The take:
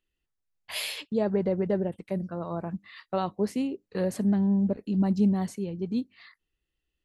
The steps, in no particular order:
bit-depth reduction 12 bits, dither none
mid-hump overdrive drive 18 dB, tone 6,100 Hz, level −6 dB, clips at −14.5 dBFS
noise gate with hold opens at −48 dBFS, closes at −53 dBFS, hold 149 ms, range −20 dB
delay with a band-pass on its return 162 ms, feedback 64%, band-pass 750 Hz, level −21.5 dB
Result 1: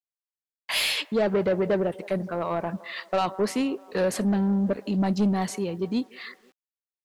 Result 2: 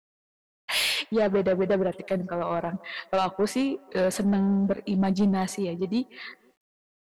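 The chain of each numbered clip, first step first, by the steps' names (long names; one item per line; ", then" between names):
delay with a band-pass on its return, then noise gate with hold, then bit-depth reduction, then mid-hump overdrive
mid-hump overdrive, then delay with a band-pass on its return, then noise gate with hold, then bit-depth reduction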